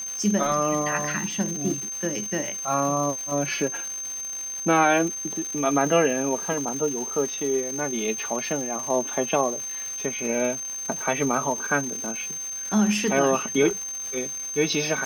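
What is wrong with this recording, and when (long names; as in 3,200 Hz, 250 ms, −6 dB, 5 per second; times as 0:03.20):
surface crackle 480 per second −31 dBFS
whistle 6,300 Hz −30 dBFS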